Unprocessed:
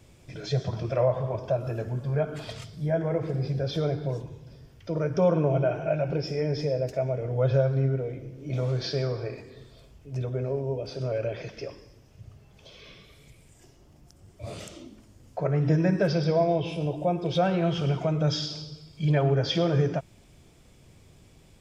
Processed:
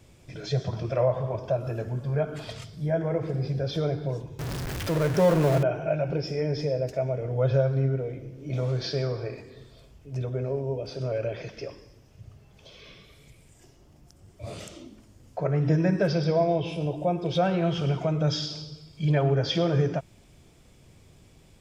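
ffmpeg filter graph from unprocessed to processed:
-filter_complex "[0:a]asettb=1/sr,asplit=3[a][b][c];[a]atrim=end=4.394[d];[b]atrim=start=4.39:end=5.63,asetpts=PTS-STARTPTS,afade=t=in:d=0.004:c=qsin,afade=t=out:st=1.236:d=0.004:c=qsin,aeval=exprs='val(0)+0.5*0.0447*sgn(val(0))':c=same,equalizer=f=1.7k:t=o:w=0.36:g=4[e];[c]atrim=start=5.626[f];[d][e]acrossfade=d=0.004:c1=hsin:c2=qsin[g];[g][f]acrossfade=d=0.004:c1=qsin:c2=hsin"

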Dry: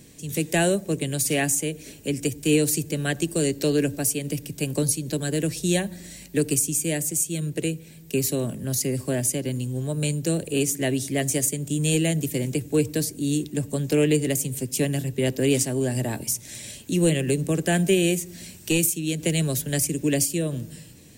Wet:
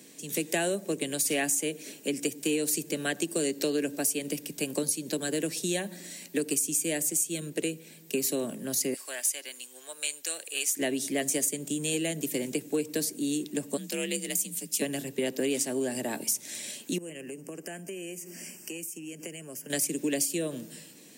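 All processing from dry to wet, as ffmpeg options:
-filter_complex "[0:a]asettb=1/sr,asplit=3[a][b][c];[a]atrim=end=8.944[d];[b]atrim=start=8.94:end=10.77,asetpts=PTS-STARTPTS,afade=t=in:d=0.004:c=qsin,afade=t=out:st=1.826:d=0.004:c=qsin,highpass=1.2k,asoftclip=type=hard:threshold=-15.5dB[e];[c]atrim=start=10.766[f];[d][e]acrossfade=d=0.004:c1=hsin:c2=qsin[g];[g][f]acrossfade=d=0.004:c1=qsin:c2=hsin,asettb=1/sr,asplit=3[h][i][j];[h]atrim=end=13.774[k];[i]atrim=start=13.77:end=14.82,asetpts=PTS-STARTPTS,afade=t=in:d=0.004:c=qsin,afade=t=out:st=1.046:d=0.004:c=qsin,equalizer=f=460:w=0.35:g=-13.5,afreqshift=43[l];[j]atrim=start=14.816[m];[k][l]acrossfade=d=0.004:c1=hsin:c2=qsin[n];[n][m]acrossfade=d=0.004:c1=qsin:c2=hsin,asettb=1/sr,asplit=3[o][p][q];[o]atrim=end=16.984[r];[p]atrim=start=16.98:end=19.7,asetpts=PTS-STARTPTS,afade=t=in:d=0.004:c=qsin,afade=t=out:st=2.716:d=0.004:c=qsin,asuperstop=centerf=3800:order=12:qfactor=2.6,acompressor=threshold=-35dB:ratio=6:attack=3.2:release=140:knee=1:detection=peak[s];[q]atrim=start=19.696[t];[r][s]acrossfade=d=0.004:c1=hsin:c2=qsin[u];[u][t]acrossfade=d=0.004:c1=qsin:c2=hsin,acompressor=threshold=-23dB:ratio=6,highpass=f=200:w=0.5412,highpass=f=200:w=1.3066,lowshelf=f=350:g=-3"

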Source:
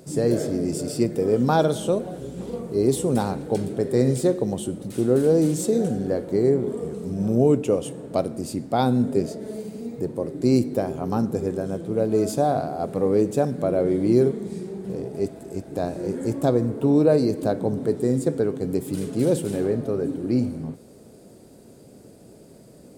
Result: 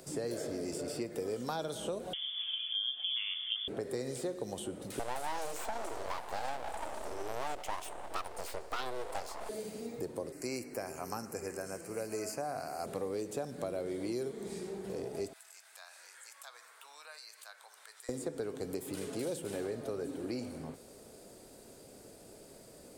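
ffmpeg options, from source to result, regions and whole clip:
-filter_complex "[0:a]asettb=1/sr,asplit=3[a][b][c];[a]atrim=end=2.134[d];[b]atrim=start=2.13:end=3.68,asetpts=PTS-STARTPTS,afade=t=in:d=0.004:c=qsin,afade=t=out:st=1.546:d=0.004:c=qsin,lowpass=f=3.1k:t=q:w=0.5098,lowpass=f=3.1k:t=q:w=0.6013,lowpass=f=3.1k:t=q:w=0.9,lowpass=f=3.1k:t=q:w=2.563,afreqshift=-3600,highpass=f=1.1k:p=1[e];[c]atrim=start=3.676[f];[d][e]acrossfade=d=0.004:c1=hsin:c2=qsin[g];[g][f]acrossfade=d=0.004:c1=qsin:c2=hsin,asettb=1/sr,asplit=3[h][i][j];[h]atrim=end=4.994[k];[i]atrim=start=4.99:end=9.49,asetpts=PTS-STARTPTS,afade=t=in:d=0.004:c=qsin,afade=t=out:st=4.496:d=0.004:c=qsin,asuperstop=centerf=1100:order=20:qfactor=1.3,aeval=exprs='abs(val(0))':c=same[l];[j]atrim=start=9.486[m];[k][l]acrossfade=d=0.004:c1=hsin:c2=qsin[n];[n][m]acrossfade=d=0.004:c1=qsin:c2=hsin,asettb=1/sr,asplit=3[o][p][q];[o]atrim=end=10.324[r];[p]atrim=start=10.32:end=12.86,asetpts=PTS-STARTPTS,afade=t=in:d=0.004:c=qsin,afade=t=out:st=2.536:d=0.004:c=qsin,asuperstop=centerf=3500:order=4:qfactor=1.7,tiltshelf=f=1.4k:g=-9[s];[q]atrim=start=12.856[t];[r][s]acrossfade=d=0.004:c1=hsin:c2=qsin[u];[u][t]acrossfade=d=0.004:c1=qsin:c2=hsin,asettb=1/sr,asplit=3[v][w][x];[v]atrim=end=15.334[y];[w]atrim=start=15.33:end=18.09,asetpts=PTS-STARTPTS,afade=t=in:d=0.004:c=qsin,afade=t=out:st=2.756:d=0.004:c=qsin,highpass=f=1.2k:w=0.5412,highpass=f=1.2k:w=1.3066,acompressor=threshold=-54dB:ratio=2:attack=3.2:release=140:knee=1:detection=peak[z];[x]atrim=start=18.086[aa];[y][z]acrossfade=d=0.004:c1=hsin:c2=qsin[ab];[ab][aa]acrossfade=d=0.004:c1=qsin:c2=hsin,acompressor=threshold=-25dB:ratio=1.5,equalizer=f=160:t=o:w=2.9:g=-13,acrossover=split=300|2900[ac][ad][ae];[ac]acompressor=threshold=-45dB:ratio=4[af];[ad]acompressor=threshold=-38dB:ratio=4[ag];[ae]acompressor=threshold=-48dB:ratio=4[ah];[af][ag][ah]amix=inputs=3:normalize=0,volume=1dB"

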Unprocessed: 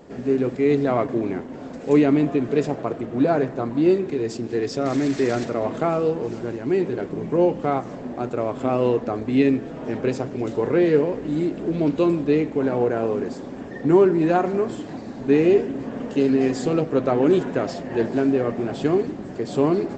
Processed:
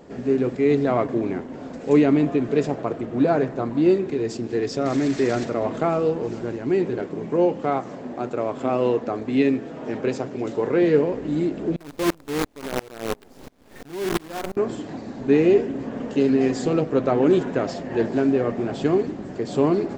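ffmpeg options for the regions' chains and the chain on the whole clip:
-filter_complex "[0:a]asettb=1/sr,asplit=3[a][b][c];[a]atrim=end=7.024[d];[b]atrim=start=7.02:end=10.82,asetpts=PTS-STARTPTS,afade=t=in:d=0.004:c=qsin,afade=t=out:st=3.796:d=0.004:c=qsin,highpass=60,lowshelf=f=140:g=-7.5[e];[c]atrim=start=10.816[f];[d][e]acrossfade=d=0.004:c1=hsin:c2=qsin[g];[g][f]acrossfade=d=0.004:c1=qsin:c2=hsin,asettb=1/sr,asplit=3[h][i][j];[h]atrim=end=11.764[k];[i]atrim=start=11.76:end=14.57,asetpts=PTS-STARTPTS,afade=t=in:d=0.004:c=qsin,afade=t=out:st=2.806:d=0.004:c=qsin,acrusher=bits=4:dc=4:mix=0:aa=0.000001,aeval=exprs='val(0)*pow(10,-30*if(lt(mod(-2.9*n/s,1),2*abs(-2.9)/1000),1-mod(-2.9*n/s,1)/(2*abs(-2.9)/1000),(mod(-2.9*n/s,1)-2*abs(-2.9)/1000)/(1-2*abs(-2.9)/1000))/20)':c=same[l];[j]atrim=start=14.566[m];[k][l]acrossfade=d=0.004:c1=hsin:c2=qsin[n];[n][m]acrossfade=d=0.004:c1=qsin:c2=hsin"

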